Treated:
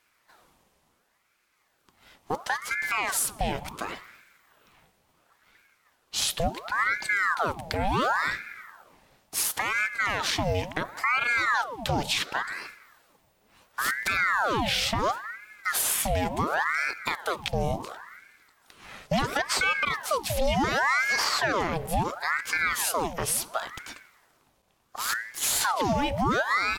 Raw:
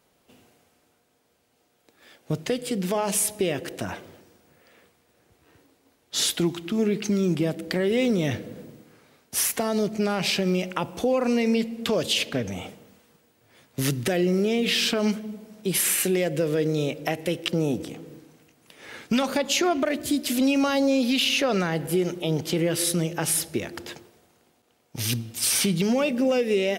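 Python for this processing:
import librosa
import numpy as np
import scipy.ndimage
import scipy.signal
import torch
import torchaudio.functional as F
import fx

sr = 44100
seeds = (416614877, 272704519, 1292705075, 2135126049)

y = fx.ring_lfo(x, sr, carrier_hz=1100.0, swing_pct=75, hz=0.71)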